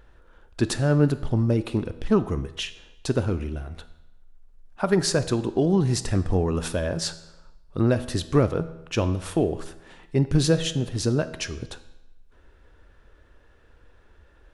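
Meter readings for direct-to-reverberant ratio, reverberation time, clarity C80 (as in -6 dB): 12.0 dB, 0.95 s, 16.5 dB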